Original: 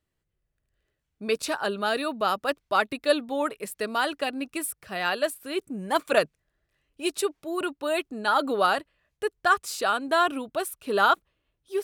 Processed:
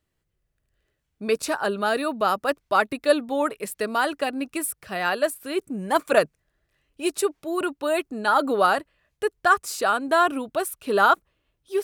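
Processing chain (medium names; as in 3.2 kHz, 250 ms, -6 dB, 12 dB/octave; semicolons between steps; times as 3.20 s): dynamic bell 3.4 kHz, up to -6 dB, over -42 dBFS, Q 1.3; trim +3.5 dB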